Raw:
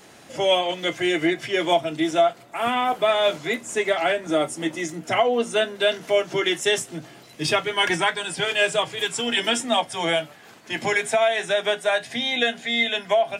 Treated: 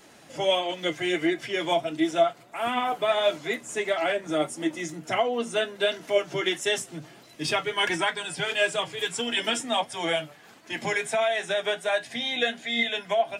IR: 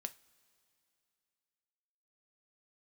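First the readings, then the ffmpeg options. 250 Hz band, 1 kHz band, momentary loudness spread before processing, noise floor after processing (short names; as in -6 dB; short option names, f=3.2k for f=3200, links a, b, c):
-3.5 dB, -4.5 dB, 6 LU, -52 dBFS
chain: -af "flanger=delay=3:depth=4:regen=55:speed=1.5:shape=sinusoidal"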